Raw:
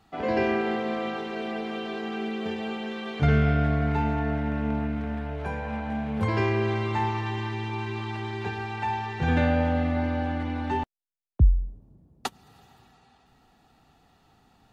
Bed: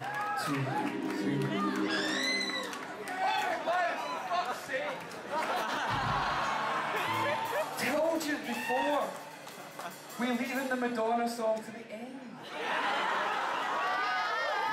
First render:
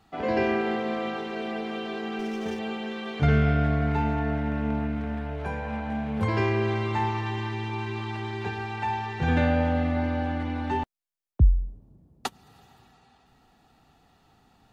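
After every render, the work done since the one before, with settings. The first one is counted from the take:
0:02.19–0:02.59: windowed peak hold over 5 samples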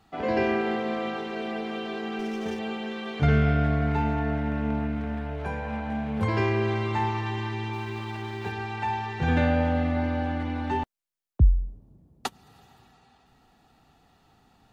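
0:07.73–0:08.52: mu-law and A-law mismatch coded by A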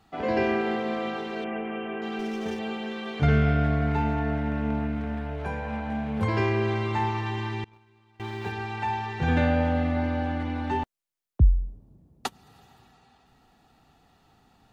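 0:01.44–0:02.02: Butterworth low-pass 3,000 Hz 72 dB per octave
0:07.64–0:08.20: noise gate −29 dBFS, range −27 dB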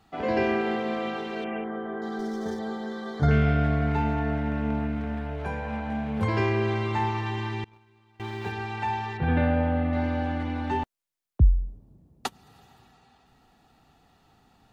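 0:01.64–0:03.31: Butterworth band-reject 2,600 Hz, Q 1.5
0:09.17–0:09.93: high-frequency loss of the air 300 metres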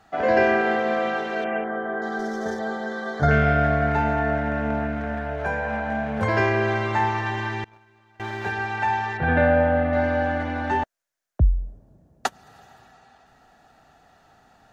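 graphic EQ with 15 bands 630 Hz +11 dB, 1,600 Hz +11 dB, 6,300 Hz +6 dB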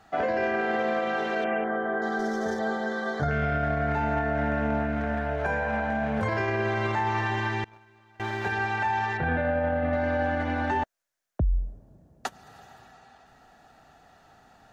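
brickwall limiter −18.5 dBFS, peak gain reduction 11 dB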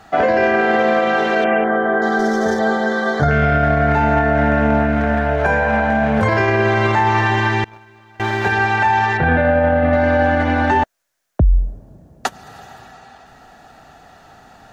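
level +11.5 dB

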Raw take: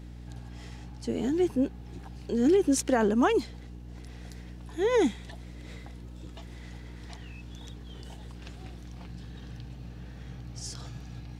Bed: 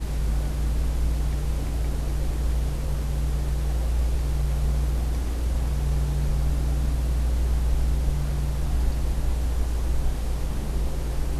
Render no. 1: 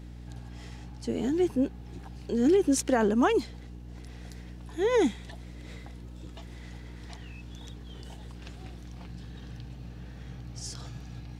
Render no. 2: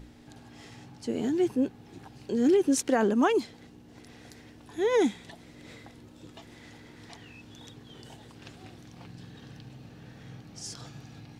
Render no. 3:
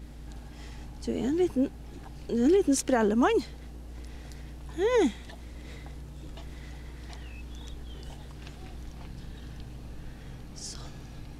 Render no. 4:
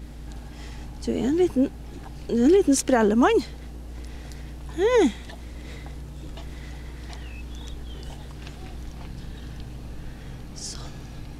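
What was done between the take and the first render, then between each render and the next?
no processing that can be heard
mains-hum notches 60/120/180 Hz
mix in bed −19.5 dB
level +5 dB

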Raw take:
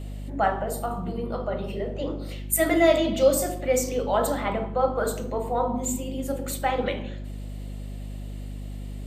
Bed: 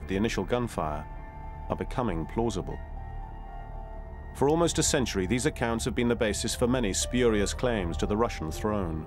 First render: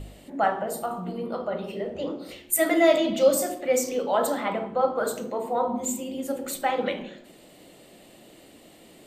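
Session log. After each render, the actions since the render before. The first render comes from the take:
hum removal 50 Hz, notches 9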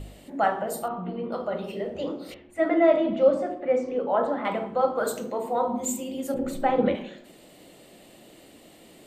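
0:00.88–0:01.32: low-pass filter 3,300 Hz 24 dB per octave
0:02.34–0:04.45: low-pass filter 1,600 Hz
0:06.34–0:06.95: spectral tilt −4 dB per octave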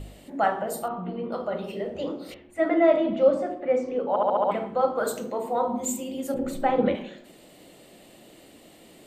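0:04.09: stutter in place 0.07 s, 6 plays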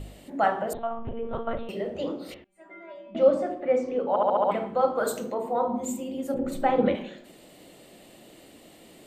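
0:00.73–0:01.69: one-pitch LPC vocoder at 8 kHz 230 Hz
0:02.44–0:03.15: stiff-string resonator 190 Hz, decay 0.65 s, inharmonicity 0.002
0:05.34–0:06.52: high-shelf EQ 2,300 Hz −7.5 dB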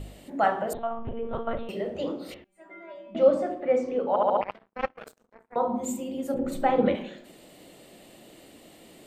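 0:04.41–0:05.56: power curve on the samples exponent 3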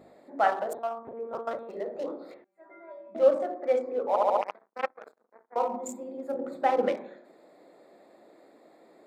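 adaptive Wiener filter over 15 samples
high-pass filter 410 Hz 12 dB per octave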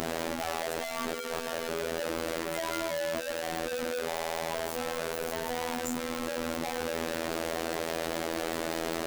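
sign of each sample alone
phases set to zero 82.3 Hz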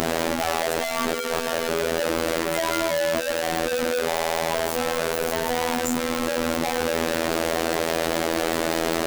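level +9 dB
brickwall limiter −2 dBFS, peak gain reduction 1 dB

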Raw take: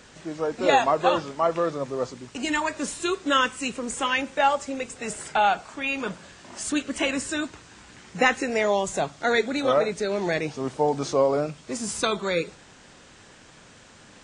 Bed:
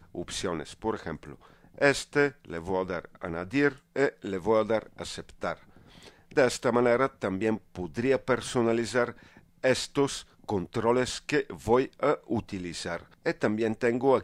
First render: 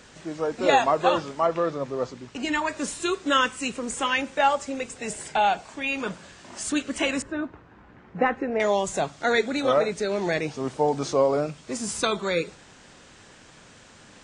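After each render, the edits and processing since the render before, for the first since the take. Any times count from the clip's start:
0:01.46–0:02.69: high-frequency loss of the air 64 metres
0:04.98–0:05.92: parametric band 1,300 Hz −8 dB 0.33 octaves
0:07.22–0:08.60: low-pass filter 1,300 Hz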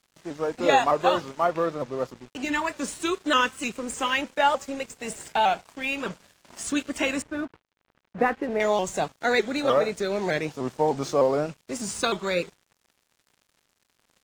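dead-zone distortion −44.5 dBFS
pitch modulation by a square or saw wave saw up 3.3 Hz, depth 100 cents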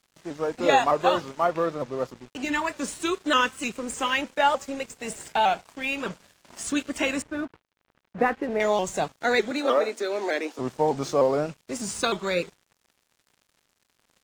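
0:09.51–0:10.59: Chebyshev high-pass filter 230 Hz, order 6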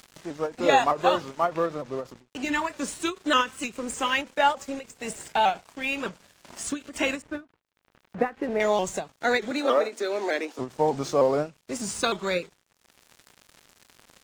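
upward compression, threshold −39 dBFS
every ending faded ahead of time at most 270 dB per second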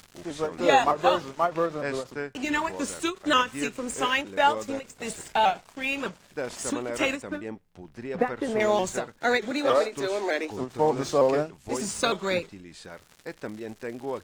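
mix in bed −9.5 dB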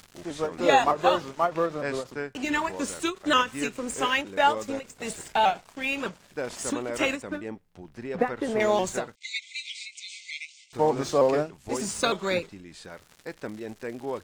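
0:09.15–0:10.73: linear-phase brick-wall band-pass 2,000–9,000 Hz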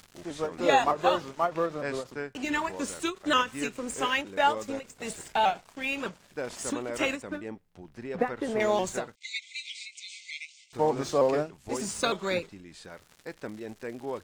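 level −2.5 dB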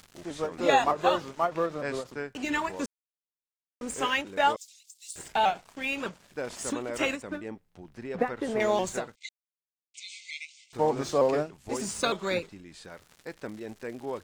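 0:02.86–0:03.81: silence
0:04.56–0:05.16: inverse Chebyshev high-pass filter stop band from 1,200 Hz, stop band 60 dB
0:09.29–0:09.94: silence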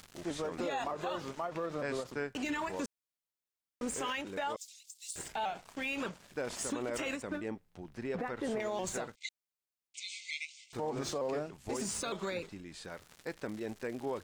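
downward compressor, threshold −26 dBFS, peak gain reduction 9 dB
brickwall limiter −27 dBFS, peak gain reduction 10.5 dB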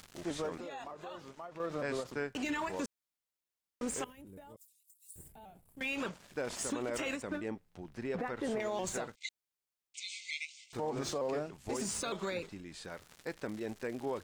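0:00.58–0:01.60: clip gain −9 dB
0:04.04–0:05.81: drawn EQ curve 110 Hz 0 dB, 1,400 Hz −25 dB, 6,300 Hz −24 dB, 11,000 Hz +1 dB

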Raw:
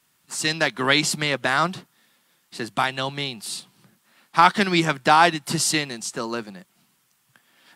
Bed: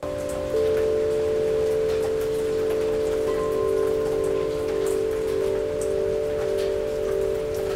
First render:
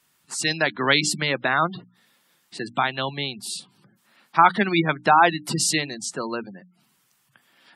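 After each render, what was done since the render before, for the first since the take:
mains-hum notches 60/120/180/240/300 Hz
gate on every frequency bin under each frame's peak −20 dB strong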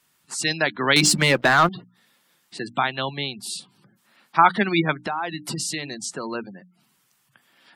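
0:00.96–0:01.69: leveller curve on the samples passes 2
0:05.02–0:06.35: downward compressor 4 to 1, threshold −25 dBFS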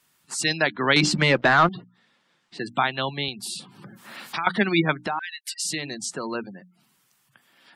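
0:00.67–0:02.60: high-frequency loss of the air 110 metres
0:03.28–0:04.47: multiband upward and downward compressor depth 100%
0:05.19–0:05.65: linear-phase brick-wall high-pass 1,500 Hz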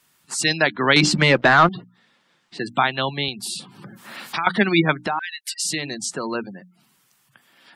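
level +3.5 dB
brickwall limiter −2 dBFS, peak gain reduction 1 dB

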